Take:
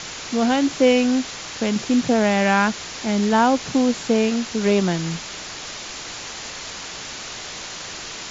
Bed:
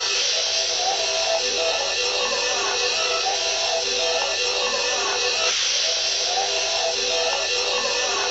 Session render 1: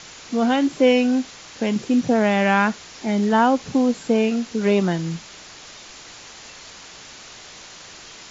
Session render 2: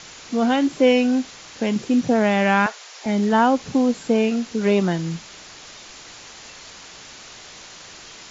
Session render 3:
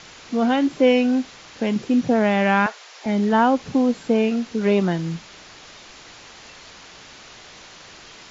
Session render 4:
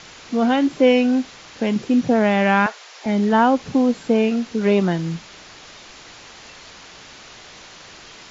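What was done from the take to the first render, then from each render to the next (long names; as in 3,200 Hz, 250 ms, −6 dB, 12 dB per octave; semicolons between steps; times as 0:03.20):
noise reduction from a noise print 8 dB
0:02.66–0:03.06: high-pass filter 490 Hz 24 dB per octave
high-frequency loss of the air 81 metres
level +1.5 dB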